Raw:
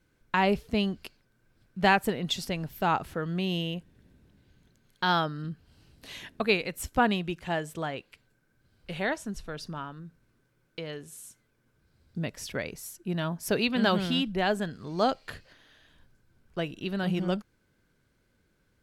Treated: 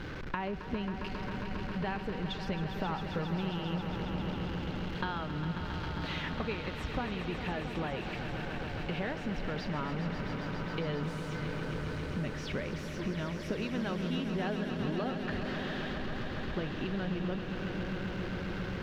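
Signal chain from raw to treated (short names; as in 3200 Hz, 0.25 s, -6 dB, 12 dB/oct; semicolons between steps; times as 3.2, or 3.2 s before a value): zero-crossing step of -36.5 dBFS; compressor 10:1, threshold -35 dBFS, peak gain reduction 18.5 dB; air absorption 250 m; notch 680 Hz, Q 12; on a send: swelling echo 0.135 s, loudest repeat 5, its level -10 dB; on the sum: gain +3 dB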